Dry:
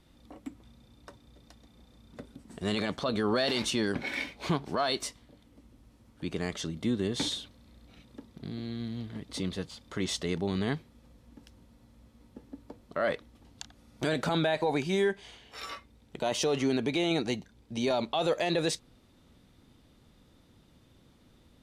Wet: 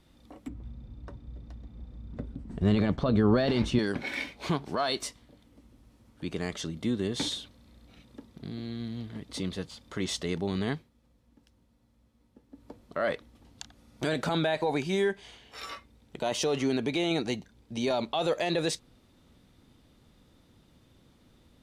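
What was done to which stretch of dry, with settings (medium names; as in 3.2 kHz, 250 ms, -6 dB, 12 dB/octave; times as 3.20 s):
0.48–3.79 s: RIAA curve playback
10.70–12.69 s: dip -9 dB, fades 0.20 s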